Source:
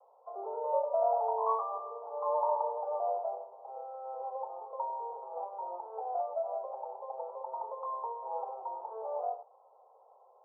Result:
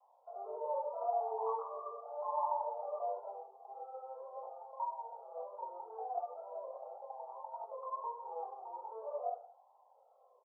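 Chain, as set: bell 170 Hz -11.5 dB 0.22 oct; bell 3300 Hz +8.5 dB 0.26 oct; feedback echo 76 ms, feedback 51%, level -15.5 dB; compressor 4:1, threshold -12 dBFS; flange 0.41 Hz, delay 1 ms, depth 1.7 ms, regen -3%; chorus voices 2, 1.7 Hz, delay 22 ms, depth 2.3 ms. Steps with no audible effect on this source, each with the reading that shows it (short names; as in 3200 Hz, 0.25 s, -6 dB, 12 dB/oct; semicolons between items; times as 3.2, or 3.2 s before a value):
bell 170 Hz: input band starts at 340 Hz; bell 3300 Hz: input band ends at 1400 Hz; compressor, threshold -12 dBFS: input peak -18.5 dBFS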